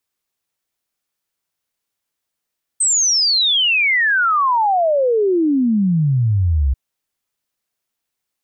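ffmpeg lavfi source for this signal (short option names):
-f lavfi -i "aevalsrc='0.237*clip(min(t,3.94-t)/0.01,0,1)*sin(2*PI*8400*3.94/log(63/8400)*(exp(log(63/8400)*t/3.94)-1))':d=3.94:s=44100"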